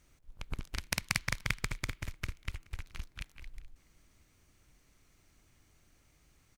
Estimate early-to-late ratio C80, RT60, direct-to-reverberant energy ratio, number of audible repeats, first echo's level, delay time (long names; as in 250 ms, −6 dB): no reverb audible, no reverb audible, no reverb audible, 1, −24.0 dB, 425 ms